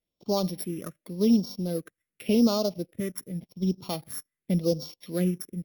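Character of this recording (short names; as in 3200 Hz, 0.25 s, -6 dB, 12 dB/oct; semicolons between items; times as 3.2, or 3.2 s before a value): a buzz of ramps at a fixed pitch in blocks of 8 samples; phasing stages 4, 0.88 Hz, lowest notch 760–1800 Hz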